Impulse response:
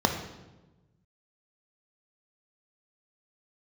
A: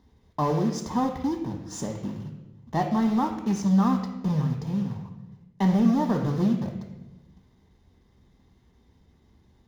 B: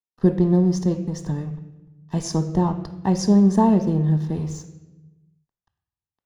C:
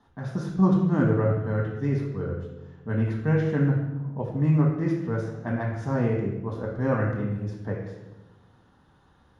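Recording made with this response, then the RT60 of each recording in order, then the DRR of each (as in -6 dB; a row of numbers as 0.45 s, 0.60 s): A; 1.1 s, 1.1 s, 1.1 s; 4.5 dB, 9.0 dB, -1.0 dB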